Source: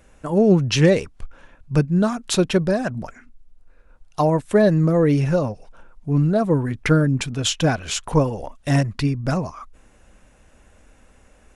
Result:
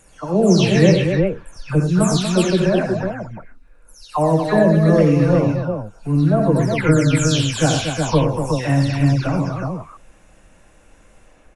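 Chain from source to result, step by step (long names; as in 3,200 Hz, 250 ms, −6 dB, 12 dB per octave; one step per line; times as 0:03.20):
every frequency bin delayed by itself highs early, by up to 298 ms
multi-tap delay 62/87/115/238/367 ms −10.5/−7/−11.5/−7.5/−4.5 dB
level +1 dB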